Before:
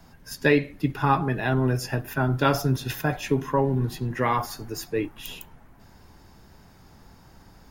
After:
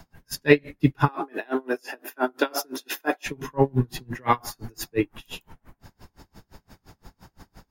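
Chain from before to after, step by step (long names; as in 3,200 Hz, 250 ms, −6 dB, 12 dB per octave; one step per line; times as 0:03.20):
0:01.08–0:03.26: Butterworth high-pass 270 Hz 36 dB per octave
tremolo with a sine in dB 5.8 Hz, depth 34 dB
level +7 dB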